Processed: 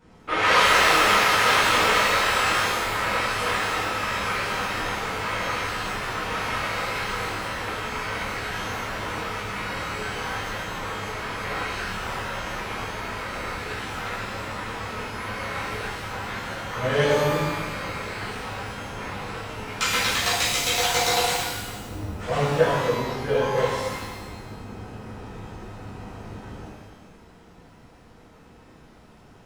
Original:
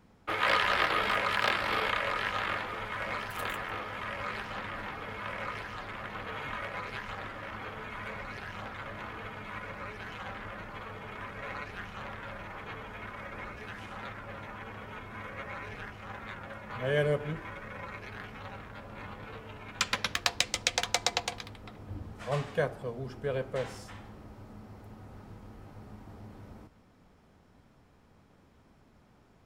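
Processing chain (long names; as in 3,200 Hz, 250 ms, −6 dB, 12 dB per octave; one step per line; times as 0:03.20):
downsampling to 22,050 Hz
soft clipping −18.5 dBFS, distortion −15 dB
reverb with rising layers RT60 1.1 s, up +12 semitones, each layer −8 dB, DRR −10.5 dB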